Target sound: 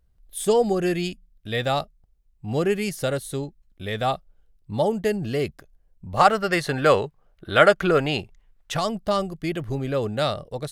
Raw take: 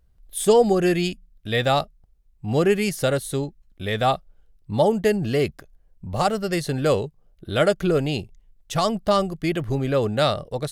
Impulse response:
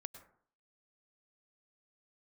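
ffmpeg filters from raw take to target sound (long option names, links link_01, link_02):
-filter_complex "[0:a]asettb=1/sr,asplit=3[link_01][link_02][link_03];[link_01]atrim=end=6.174[link_04];[link_02]atrim=start=6.17:end=8.77,asetpts=PTS-STARTPTS,afade=type=in:duration=0.004:curve=qsin,afade=type=out:start_time=2.596:duration=0.004:curve=qsin,equalizer=frequency=1400:width_type=o:width=2.5:gain=13[link_05];[link_03]atrim=start=8.766[link_06];[link_04][link_05]acrossfade=duration=0.004:curve1=hsin:curve2=qsin[link_07];[link_07][link_06]acrossfade=duration=0.004:curve1=qsin:curve2=hsin,volume=-3.5dB"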